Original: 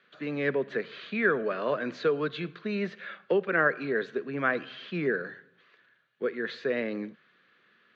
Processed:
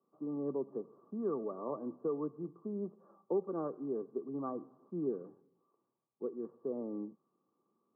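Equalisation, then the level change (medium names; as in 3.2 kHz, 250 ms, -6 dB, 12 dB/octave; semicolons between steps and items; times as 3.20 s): rippled Chebyshev low-pass 1.2 kHz, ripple 9 dB; -3.5 dB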